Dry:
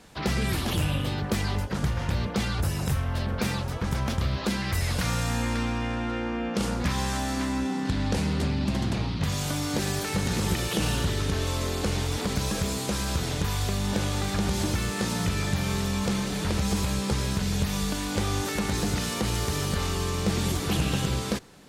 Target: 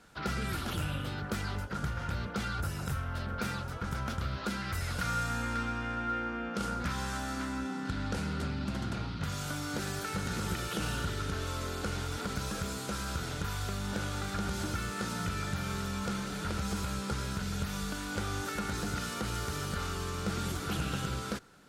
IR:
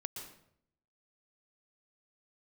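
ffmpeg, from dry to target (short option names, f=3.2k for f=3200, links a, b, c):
-af "equalizer=f=1.4k:w=6.7:g=15,volume=-8.5dB"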